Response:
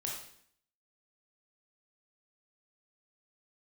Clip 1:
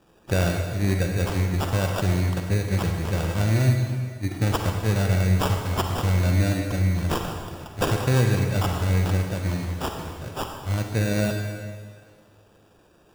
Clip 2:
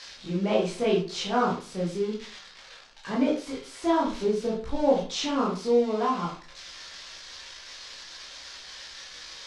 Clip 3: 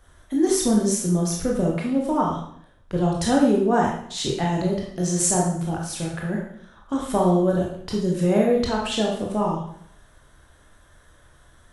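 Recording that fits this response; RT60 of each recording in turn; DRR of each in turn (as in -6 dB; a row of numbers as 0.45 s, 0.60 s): 3; 1.8 s, 0.45 s, 0.60 s; 3.0 dB, -5.0 dB, -2.0 dB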